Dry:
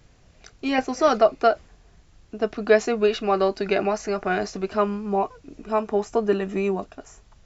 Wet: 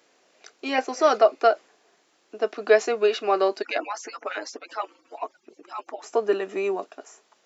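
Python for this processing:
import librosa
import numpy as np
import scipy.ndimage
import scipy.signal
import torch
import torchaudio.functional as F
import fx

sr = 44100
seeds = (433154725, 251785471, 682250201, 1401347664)

y = fx.hpss_only(x, sr, part='percussive', at=(3.62, 6.04))
y = scipy.signal.sosfilt(scipy.signal.butter(4, 320.0, 'highpass', fs=sr, output='sos'), y)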